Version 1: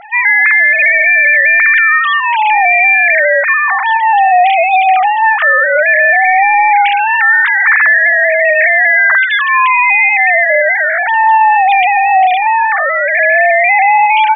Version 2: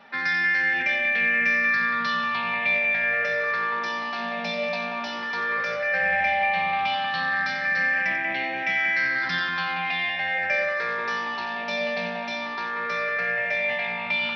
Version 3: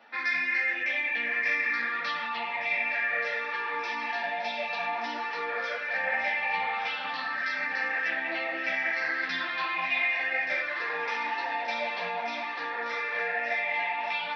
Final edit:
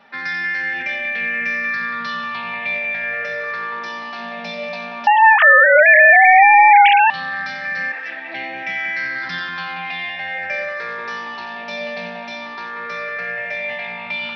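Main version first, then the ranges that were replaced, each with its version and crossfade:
2
0:05.07–0:07.10: punch in from 1
0:07.92–0:08.34: punch in from 3

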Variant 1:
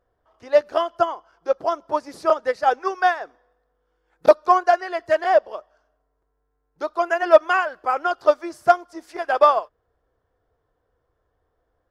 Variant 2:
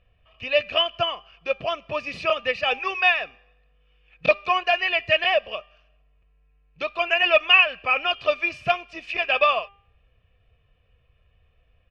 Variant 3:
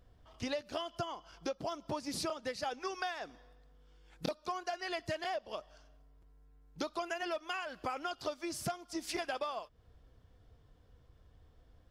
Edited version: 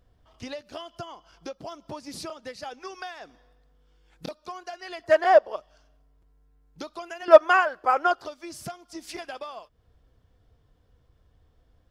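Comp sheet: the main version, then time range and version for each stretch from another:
3
0:05.04–0:05.56: punch in from 1
0:07.28–0:08.25: punch in from 1
not used: 2

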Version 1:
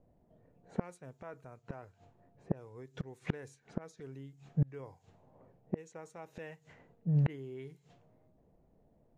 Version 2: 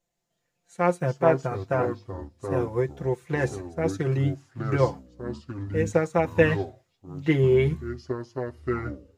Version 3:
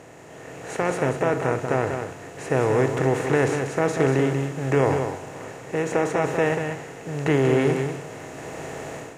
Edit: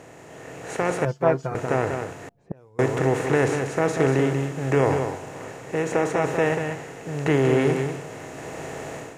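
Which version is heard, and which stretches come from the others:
3
0:01.05–0:01.55: punch in from 2
0:02.29–0:02.79: punch in from 1

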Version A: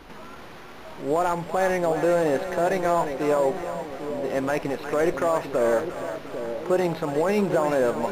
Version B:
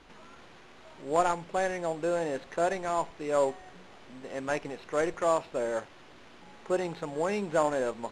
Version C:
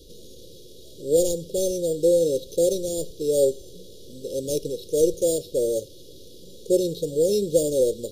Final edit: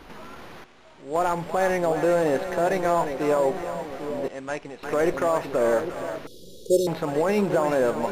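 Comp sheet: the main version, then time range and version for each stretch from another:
A
0:00.64–0:01.15: punch in from B
0:04.28–0:04.83: punch in from B
0:06.27–0:06.87: punch in from C

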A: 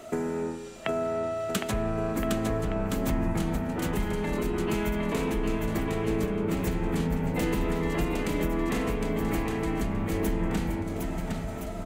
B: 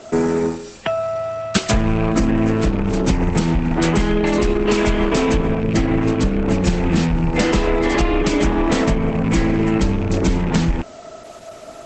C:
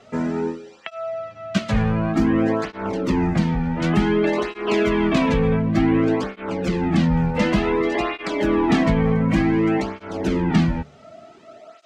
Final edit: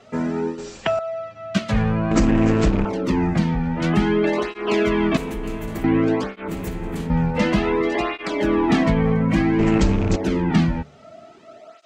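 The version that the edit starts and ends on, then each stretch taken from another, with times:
C
0:00.58–0:00.99: punch in from B
0:02.11–0:02.85: punch in from B
0:05.17–0:05.84: punch in from A
0:06.48–0:07.10: punch in from A
0:09.59–0:10.16: punch in from B

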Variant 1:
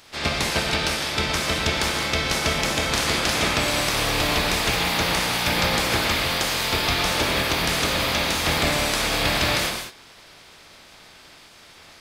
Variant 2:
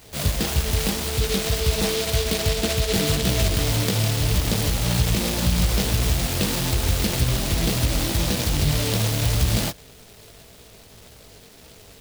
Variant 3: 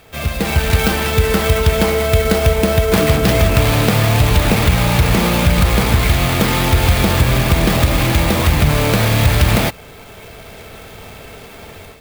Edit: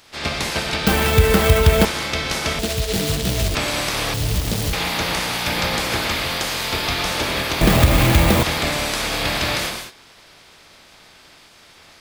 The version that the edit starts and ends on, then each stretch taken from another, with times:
1
0:00.87–0:01.85: punch in from 3
0:02.59–0:03.55: punch in from 2
0:04.14–0:04.73: punch in from 2
0:07.61–0:08.43: punch in from 3

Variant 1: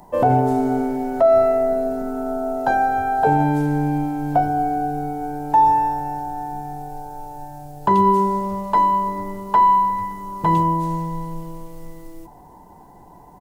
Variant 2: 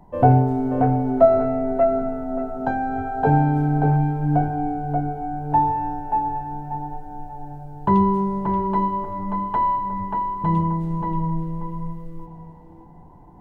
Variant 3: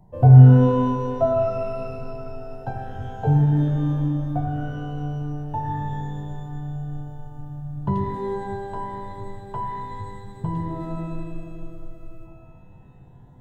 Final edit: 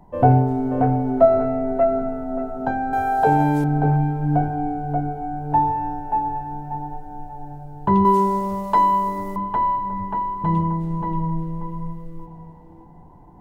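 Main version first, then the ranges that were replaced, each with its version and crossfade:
2
0:02.93–0:03.64: punch in from 1
0:08.05–0:09.36: punch in from 1
not used: 3

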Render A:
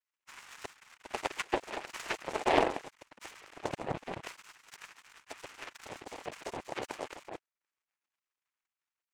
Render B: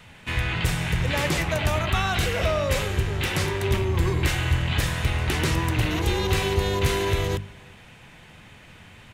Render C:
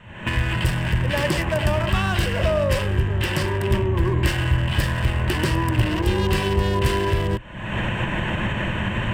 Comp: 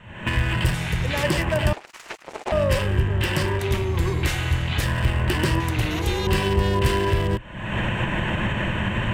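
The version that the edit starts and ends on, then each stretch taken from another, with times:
C
0:00.74–0:01.23: punch in from B
0:01.73–0:02.52: punch in from A
0:03.59–0:04.84: punch in from B
0:05.60–0:06.27: punch in from B

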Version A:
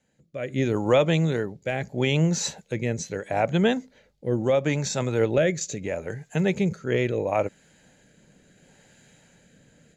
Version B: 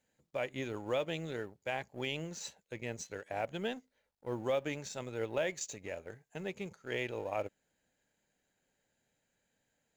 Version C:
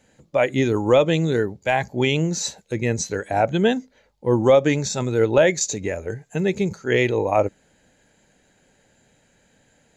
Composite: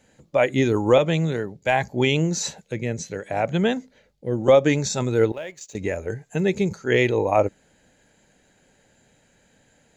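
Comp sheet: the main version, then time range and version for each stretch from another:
C
0:00.98–0:01.65: punch in from A
0:02.43–0:04.48: punch in from A
0:05.32–0:05.75: punch in from B

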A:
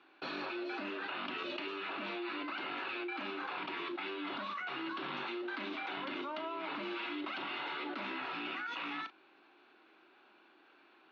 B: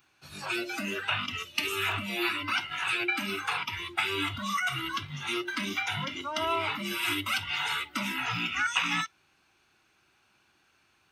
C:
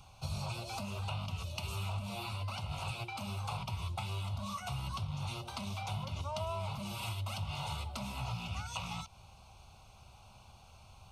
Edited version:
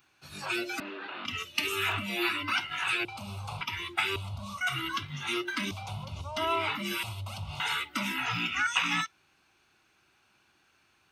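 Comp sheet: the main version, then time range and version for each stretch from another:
B
0:00.80–0:01.25: punch in from A
0:03.05–0:03.61: punch in from C
0:04.16–0:04.61: punch in from C
0:05.71–0:06.37: punch in from C
0:07.03–0:07.60: punch in from C

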